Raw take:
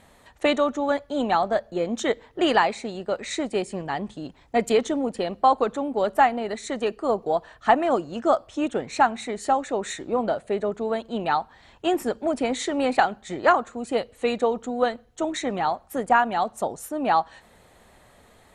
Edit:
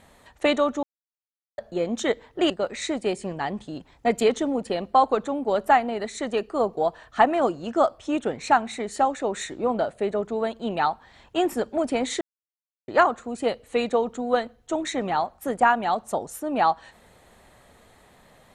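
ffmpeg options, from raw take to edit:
-filter_complex "[0:a]asplit=6[a][b][c][d][e][f];[a]atrim=end=0.83,asetpts=PTS-STARTPTS,afade=t=out:st=0.826:d=0.004:c=hsin[g];[b]atrim=start=0.83:end=1.58,asetpts=PTS-STARTPTS,volume=0[h];[c]atrim=start=1.58:end=2.502,asetpts=PTS-STARTPTS,afade=t=in:d=0.004:c=hsin[i];[d]atrim=start=2.988:end=12.7,asetpts=PTS-STARTPTS,afade=t=out:st=9.708:d=0.004:c=hsin[j];[e]atrim=start=12.7:end=13.37,asetpts=PTS-STARTPTS,volume=0[k];[f]atrim=start=13.37,asetpts=PTS-STARTPTS,afade=t=in:d=0.004:c=hsin[l];[g][h][i]concat=n=3:v=0:a=1[m];[j][k][l]concat=n=3:v=0:a=1[n];[m][n]acrossfade=d=0.004:c1=hsin:c2=hsin"

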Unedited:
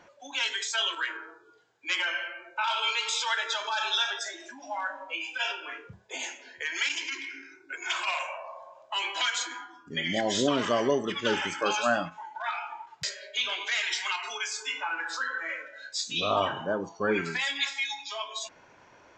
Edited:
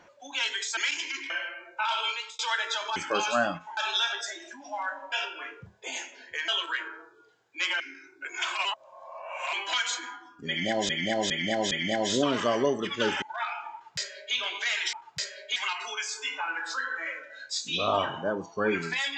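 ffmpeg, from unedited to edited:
-filter_complex "[0:a]asplit=17[a][b][c][d][e][f][g][h][i][j][k][l][m][n][o][p][q];[a]atrim=end=0.772[r];[b]atrim=start=6.748:end=7.282[s];[c]atrim=start=2.088:end=3.18,asetpts=PTS-STARTPTS,afade=t=out:st=0.702:d=0.39[t];[d]atrim=start=3.18:end=3.752,asetpts=PTS-STARTPTS,afade=t=in:d=0.004:c=hsin[u];[e]atrim=start=11.468:end=12.282[v];[f]atrim=start=3.748:end=5.102[w];[g]atrim=start=5.388:end=6.752[x];[h]atrim=start=0.768:end=2.092[y];[i]atrim=start=7.278:end=8.132[z];[j]atrim=start=8.128:end=9.012,asetpts=PTS-STARTPTS,areverse[aa];[k]atrim=start=9.008:end=10.372[ab];[l]atrim=start=9.958:end=10.372[ac];[m]atrim=start=9.958:end=10.372[ad];[n]atrim=start=9.958:end=11.472[ae];[o]atrim=start=12.278:end=13.992[af];[p]atrim=start=12.778:end=13.412[ag];[q]atrim=start=13.988[ah];[r][s]acrossfade=d=0.004:c1=hsin:c2=hsin[ai];[t][u]concat=n=2:v=0:a=1[aj];[ai][aj]acrossfade=d=0.004:c1=hsin:c2=hsin[ak];[ak][v]acrossfade=d=0.004:c1=hsin:c2=hsin[al];[al][w]acrossfade=d=0.004:c1=hsin:c2=hsin[am];[am][x]acrossfade=d=0.004:c1=hsin:c2=hsin[an];[an][y]acrossfade=d=0.004:c1=hsin:c2=hsin[ao];[ao][z]acrossfade=d=0.004:c1=hsin:c2=hsin[ap];[ap][aa]acrossfade=d=0.004:c1=hsin:c2=hsin[aq];[aq][ab]acrossfade=d=0.004:c1=hsin:c2=hsin[ar];[ar][ac]acrossfade=d=0.004:c1=hsin:c2=hsin[as];[as][ad]acrossfade=d=0.004:c1=hsin:c2=hsin[at];[at][ae]acrossfade=d=0.004:c1=hsin:c2=hsin[au];[au][af]acrossfade=d=0.004:c1=hsin:c2=hsin[av];[av][ag]acrossfade=d=0.004:c1=hsin:c2=hsin[aw];[aw][ah]acrossfade=d=0.004:c1=hsin:c2=hsin"

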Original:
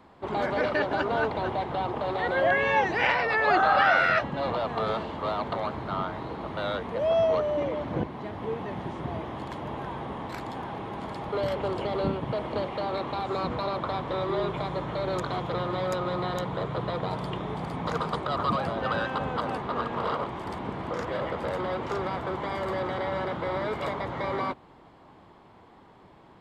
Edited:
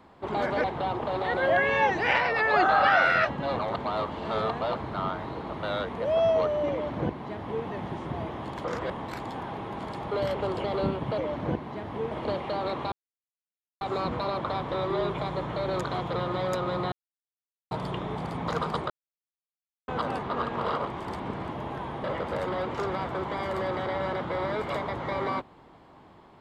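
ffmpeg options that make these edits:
-filter_complex "[0:a]asplit=15[a][b][c][d][e][f][g][h][i][j][k][l][m][n][o];[a]atrim=end=0.642[p];[b]atrim=start=1.578:end=4.532[q];[c]atrim=start=4.528:end=5.692,asetpts=PTS-STARTPTS,areverse[r];[d]atrim=start=5.688:end=9.582[s];[e]atrim=start=20.898:end=21.162[t];[f]atrim=start=10.108:end=12.392[u];[g]atrim=start=7.658:end=8.592[v];[h]atrim=start=12.388:end=13.2,asetpts=PTS-STARTPTS,afade=t=out:st=0.808:d=0.004:c=hsin,apad=pad_dur=0.89[w];[i]atrim=start=13.2:end=16.31,asetpts=PTS-STARTPTS,afade=t=in:d=0.004:c=hsin,afade=t=out:st=3.106:d=0.004:c=hsin[x];[j]atrim=start=16.31:end=17.1,asetpts=PTS-STARTPTS,volume=0[y];[k]atrim=start=17.1:end=18.29,asetpts=PTS-STARTPTS,afade=t=in:d=0.004:c=hsin,afade=t=out:st=1.186:d=0.004:c=hsin[z];[l]atrim=start=18.29:end=19.27,asetpts=PTS-STARTPTS,volume=0[aa];[m]atrim=start=19.27:end=20.902,asetpts=PTS-STARTPTS,afade=t=in:d=0.004:c=hsin[ab];[n]atrim=start=9.578:end=10.112[ac];[o]atrim=start=21.158[ad];[p][q]acrossfade=d=0.004:c1=hsin:c2=hsin[ae];[ae][r]acrossfade=d=0.004:c1=hsin:c2=hsin[af];[af][s]acrossfade=d=0.004:c1=hsin:c2=hsin[ag];[ag][t]acrossfade=d=0.004:c1=hsin:c2=hsin[ah];[ah][u]acrossfade=d=0.004:c1=hsin:c2=hsin[ai];[ai][v]acrossfade=d=0.004:c1=hsin:c2=hsin[aj];[w][x][y][z][aa][ab]concat=n=6:v=0:a=1[ak];[aj][ak]acrossfade=d=0.004:c1=hsin:c2=hsin[al];[al][ac]acrossfade=d=0.004:c1=hsin:c2=hsin[am];[am][ad]acrossfade=d=0.004:c1=hsin:c2=hsin"

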